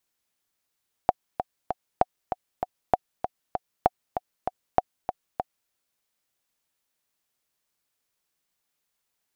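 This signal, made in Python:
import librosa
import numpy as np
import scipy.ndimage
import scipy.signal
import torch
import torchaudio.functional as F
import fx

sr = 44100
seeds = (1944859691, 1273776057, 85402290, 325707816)

y = fx.click_track(sr, bpm=195, beats=3, bars=5, hz=737.0, accent_db=8.5, level_db=-4.5)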